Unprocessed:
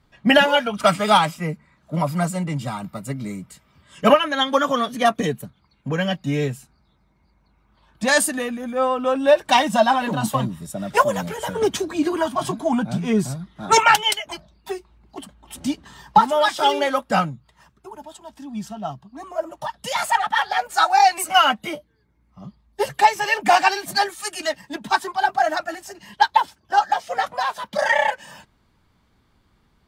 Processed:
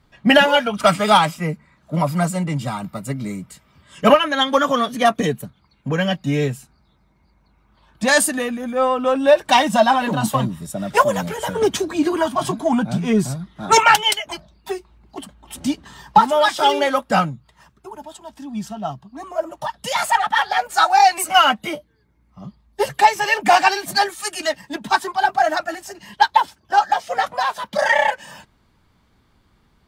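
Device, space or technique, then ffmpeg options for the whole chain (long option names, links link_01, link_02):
parallel distortion: -filter_complex "[0:a]asplit=2[link_01][link_02];[link_02]asoftclip=type=hard:threshold=-16dB,volume=-13.5dB[link_03];[link_01][link_03]amix=inputs=2:normalize=0,volume=1dB"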